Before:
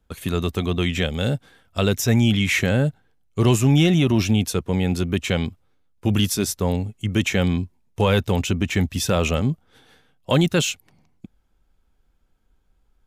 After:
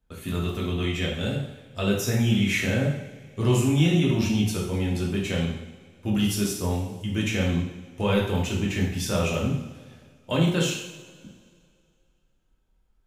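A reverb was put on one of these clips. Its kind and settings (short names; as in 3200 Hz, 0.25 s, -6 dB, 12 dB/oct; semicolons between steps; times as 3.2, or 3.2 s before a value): two-slope reverb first 0.74 s, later 2.4 s, from -18 dB, DRR -4 dB; gain -10 dB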